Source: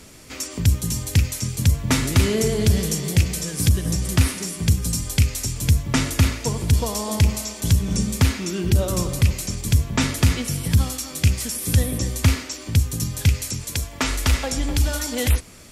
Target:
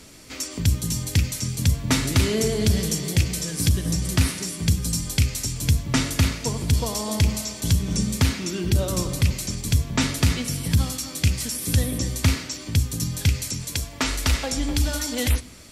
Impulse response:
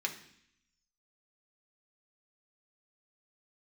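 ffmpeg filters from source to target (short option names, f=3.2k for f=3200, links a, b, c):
-filter_complex "[0:a]asplit=2[a][b];[b]equalizer=f=125:t=o:w=1:g=6,equalizer=f=250:t=o:w=1:g=10,equalizer=f=4k:t=o:w=1:g=11,equalizer=f=8k:t=o:w=1:g=8[c];[1:a]atrim=start_sample=2205,asetrate=36603,aresample=44100[d];[c][d]afir=irnorm=-1:irlink=0,volume=-19dB[e];[a][e]amix=inputs=2:normalize=0,volume=-3dB"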